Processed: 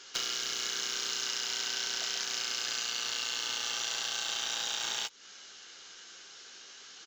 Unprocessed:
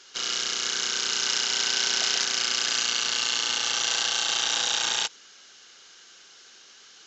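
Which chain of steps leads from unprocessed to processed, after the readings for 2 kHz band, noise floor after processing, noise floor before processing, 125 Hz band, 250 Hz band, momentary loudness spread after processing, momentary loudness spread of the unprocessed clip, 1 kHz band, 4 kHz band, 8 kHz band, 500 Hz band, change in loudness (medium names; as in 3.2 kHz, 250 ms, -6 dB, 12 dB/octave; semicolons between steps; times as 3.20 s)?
-8.5 dB, -52 dBFS, -52 dBFS, no reading, -8.5 dB, 16 LU, 3 LU, -8.5 dB, -8.0 dB, -8.0 dB, -7.5 dB, -8.5 dB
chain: in parallel at -5 dB: bit crusher 6-bit; on the sum: doubling 15 ms -8.5 dB; compression 8:1, threshold -31 dBFS, peak gain reduction 14.5 dB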